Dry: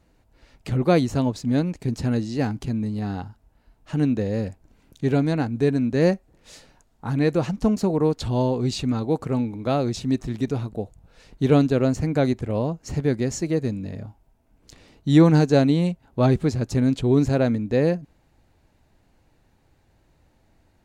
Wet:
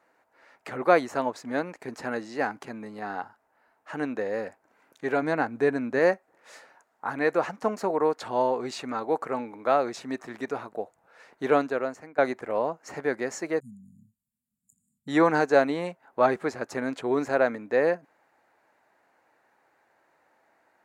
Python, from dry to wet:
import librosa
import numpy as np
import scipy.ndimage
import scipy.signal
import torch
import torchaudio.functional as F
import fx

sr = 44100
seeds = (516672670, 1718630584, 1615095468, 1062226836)

y = fx.low_shelf(x, sr, hz=220.0, db=8.5, at=(5.22, 5.99))
y = fx.brickwall_bandstop(y, sr, low_hz=240.0, high_hz=6800.0, at=(13.6, 15.08))
y = fx.edit(y, sr, fx.fade_out_to(start_s=11.5, length_s=0.68, floor_db=-21.5), tone=tone)
y = scipy.signal.sosfilt(scipy.signal.butter(2, 620.0, 'highpass', fs=sr, output='sos'), y)
y = fx.high_shelf_res(y, sr, hz=2400.0, db=-9.5, q=1.5)
y = y * librosa.db_to_amplitude(4.0)